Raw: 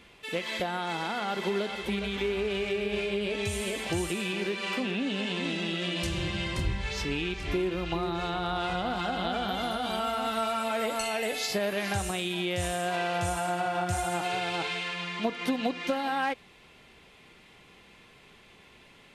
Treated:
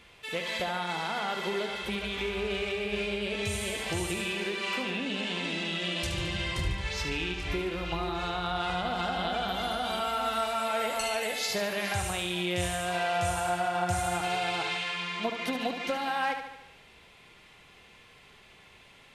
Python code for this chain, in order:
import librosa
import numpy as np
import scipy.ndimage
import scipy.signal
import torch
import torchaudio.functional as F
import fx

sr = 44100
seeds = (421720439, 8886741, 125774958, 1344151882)

p1 = fx.peak_eq(x, sr, hz=270.0, db=-6.0, octaves=1.4)
y = p1 + fx.echo_feedback(p1, sr, ms=73, feedback_pct=57, wet_db=-8, dry=0)